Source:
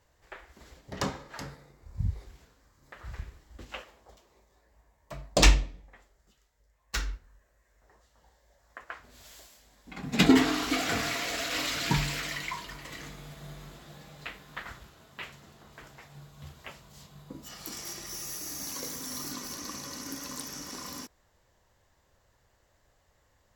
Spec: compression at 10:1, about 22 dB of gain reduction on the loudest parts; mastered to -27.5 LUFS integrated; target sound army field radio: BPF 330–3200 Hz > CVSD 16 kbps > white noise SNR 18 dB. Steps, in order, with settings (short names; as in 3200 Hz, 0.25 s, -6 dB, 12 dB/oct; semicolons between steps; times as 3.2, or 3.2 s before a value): compressor 10:1, threshold -37 dBFS; BPF 330–3200 Hz; CVSD 16 kbps; white noise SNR 18 dB; gain +20 dB